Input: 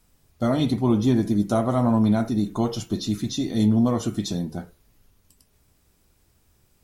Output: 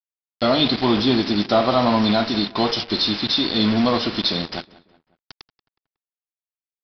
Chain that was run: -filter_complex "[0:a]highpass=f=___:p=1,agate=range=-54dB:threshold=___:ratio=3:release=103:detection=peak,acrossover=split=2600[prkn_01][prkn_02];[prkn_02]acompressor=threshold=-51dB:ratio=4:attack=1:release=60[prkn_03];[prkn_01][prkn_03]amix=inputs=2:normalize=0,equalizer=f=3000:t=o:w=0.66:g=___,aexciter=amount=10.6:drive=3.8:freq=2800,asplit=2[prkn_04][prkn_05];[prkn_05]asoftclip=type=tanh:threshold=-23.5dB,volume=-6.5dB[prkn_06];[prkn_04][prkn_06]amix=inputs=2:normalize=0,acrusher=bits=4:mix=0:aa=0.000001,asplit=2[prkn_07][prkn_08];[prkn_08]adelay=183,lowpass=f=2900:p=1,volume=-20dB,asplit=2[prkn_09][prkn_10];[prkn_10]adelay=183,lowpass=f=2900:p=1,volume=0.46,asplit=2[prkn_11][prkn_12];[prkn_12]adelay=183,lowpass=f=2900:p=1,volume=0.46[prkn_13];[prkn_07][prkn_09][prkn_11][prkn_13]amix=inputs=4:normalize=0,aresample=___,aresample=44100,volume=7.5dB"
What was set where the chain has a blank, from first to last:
700, -55dB, -6, 11025